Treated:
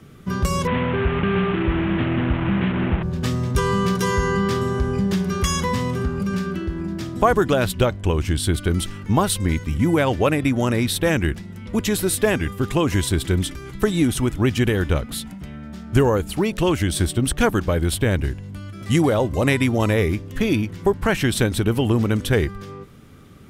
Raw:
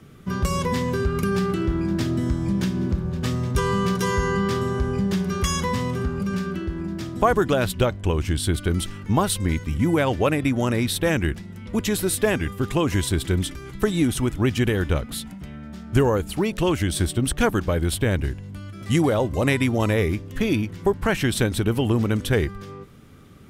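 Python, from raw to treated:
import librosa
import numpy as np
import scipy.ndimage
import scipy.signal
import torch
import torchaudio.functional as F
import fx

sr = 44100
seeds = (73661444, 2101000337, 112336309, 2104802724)

y = fx.delta_mod(x, sr, bps=16000, step_db=-22.0, at=(0.67, 3.03))
y = y * librosa.db_to_amplitude(2.0)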